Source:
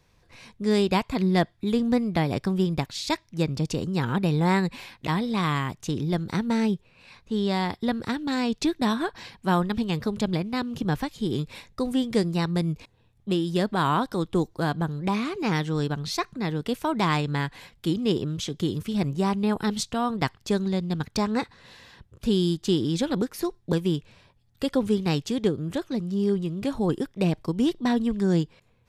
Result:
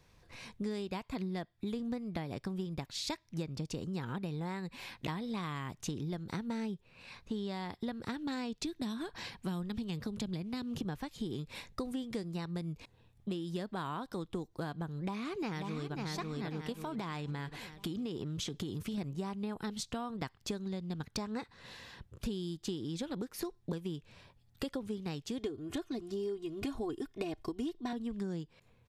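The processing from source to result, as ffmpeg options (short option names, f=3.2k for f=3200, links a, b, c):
-filter_complex "[0:a]asettb=1/sr,asplit=3[a][b][c];[a]atrim=end=8.544[d];[b]atrim=start=8.54:end=10.81,asetpts=PTS-STARTPTS,afade=t=in:d=0.004:c=qsin,afade=t=out:st=2.266:d=0.004:c=qsin,acrossover=split=320|3000[e][f][g];[f]acompressor=threshold=-38dB:ratio=2.5:attack=3.2:release=140:knee=2.83:detection=peak[h];[e][h][g]amix=inputs=3:normalize=0[i];[c]atrim=start=10.806[j];[d][i]acrossfade=d=0.004:c1=hsin:c2=qsin[k];[k][j]acrossfade=d=0.004:c1=qsin:c2=hsin,asplit=2[l][m];[m]afade=t=in:st=15:d=0.01,afade=t=out:st=15.94:d=0.01,aecho=0:1:540|1080|1620|2160|2700:0.707946|0.283178|0.113271|0.0453085|0.0181234[n];[l][n]amix=inputs=2:normalize=0,asettb=1/sr,asplit=3[o][p][q];[o]atrim=end=16.724[r];[p]atrim=start=16.72:end=18.98,asetpts=PTS-STARTPTS,afade=t=in:d=0.004:c=qsin,afade=t=out:st=2.256:d=0.004:c=qsin,acompressor=threshold=-27dB:ratio=6:attack=3.2:release=140:knee=1:detection=peak[s];[q]atrim=start=18.976[t];[r][s]acrossfade=d=0.004:c1=hsin:c2=qsin[u];[u][t]acrossfade=d=0.004:c1=qsin:c2=hsin,asettb=1/sr,asplit=3[v][w][x];[v]atrim=end=25.384[y];[w]atrim=start=25.38:end=27.93,asetpts=PTS-STARTPTS,afade=t=in:d=0.004:c=qsin,afade=t=out:st=2.546:d=0.004:c=qsin,aecho=1:1:2.8:0.87,atrim=end_sample=112455[z];[x]atrim=start=27.926[aa];[y][z]acrossfade=d=0.004:c1=hsin:c2=qsin[ab];[ab][aa]acrossfade=d=0.004:c1=qsin:c2=hsin,acompressor=threshold=-33dB:ratio=12,volume=-1.5dB"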